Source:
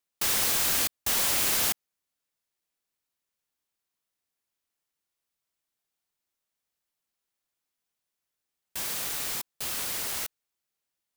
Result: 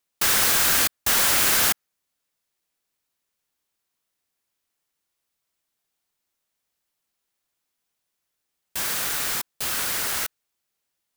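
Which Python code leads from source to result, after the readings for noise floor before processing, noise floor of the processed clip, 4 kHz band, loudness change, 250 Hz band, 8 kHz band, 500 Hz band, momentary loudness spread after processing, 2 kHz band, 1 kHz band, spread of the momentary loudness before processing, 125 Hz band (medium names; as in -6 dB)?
under -85 dBFS, -80 dBFS, +6.0 dB, +6.0 dB, +5.5 dB, +5.5 dB, +6.0 dB, 11 LU, +9.0 dB, +8.0 dB, 11 LU, +5.5 dB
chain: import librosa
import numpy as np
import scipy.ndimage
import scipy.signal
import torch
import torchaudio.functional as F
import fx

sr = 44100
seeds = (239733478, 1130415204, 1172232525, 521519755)

y = fx.dynamic_eq(x, sr, hz=1500.0, q=1.9, threshold_db=-49.0, ratio=4.0, max_db=6)
y = y * 10.0 ** (5.5 / 20.0)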